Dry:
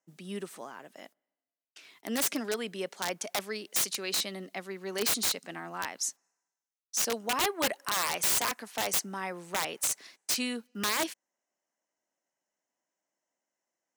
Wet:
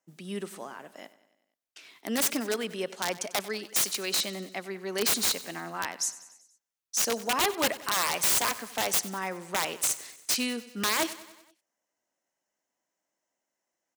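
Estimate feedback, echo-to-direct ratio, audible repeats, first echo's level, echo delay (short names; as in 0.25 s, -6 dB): 58%, -15.5 dB, 4, -17.0 dB, 95 ms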